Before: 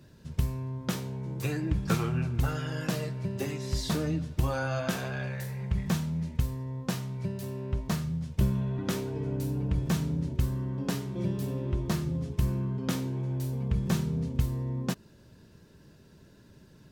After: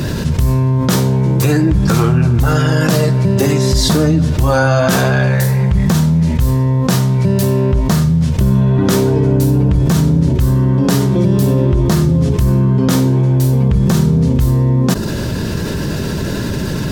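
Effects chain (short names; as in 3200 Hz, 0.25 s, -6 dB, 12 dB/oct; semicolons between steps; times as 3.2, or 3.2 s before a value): dynamic EQ 2500 Hz, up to -6 dB, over -56 dBFS, Q 1.6; maximiser +21.5 dB; fast leveller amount 70%; gain -4.5 dB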